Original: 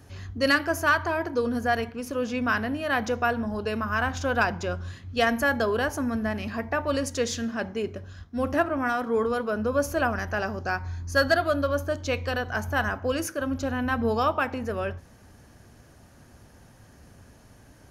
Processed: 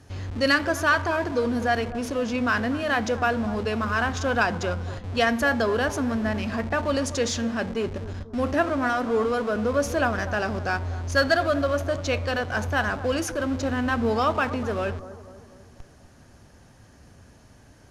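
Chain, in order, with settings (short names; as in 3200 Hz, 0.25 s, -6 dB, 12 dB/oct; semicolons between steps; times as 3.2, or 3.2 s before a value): high shelf 5500 Hz +10 dB; in parallel at -10 dB: Schmitt trigger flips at -38.5 dBFS; on the sum: air absorption 67 m; analogue delay 0.245 s, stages 2048, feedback 51%, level -14 dB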